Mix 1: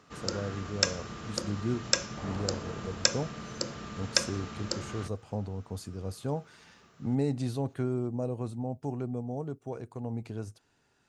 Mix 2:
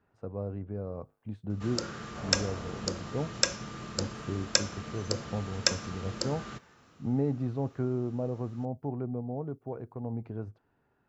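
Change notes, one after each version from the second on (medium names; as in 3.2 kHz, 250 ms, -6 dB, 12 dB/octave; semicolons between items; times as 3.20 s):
speech: add low-pass 1.4 kHz 12 dB/octave; first sound: entry +1.50 s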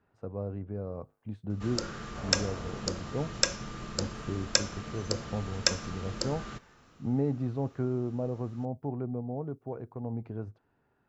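first sound: remove high-pass 71 Hz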